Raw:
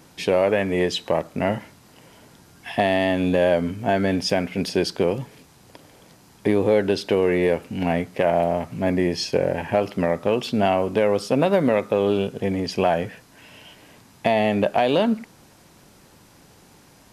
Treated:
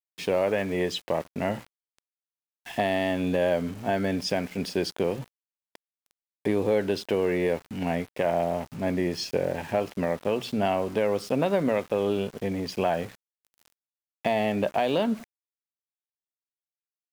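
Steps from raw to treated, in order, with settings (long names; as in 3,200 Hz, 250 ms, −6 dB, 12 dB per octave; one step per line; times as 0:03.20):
mains-hum notches 60/120 Hz
centre clipping without the shift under −36 dBFS
level −5.5 dB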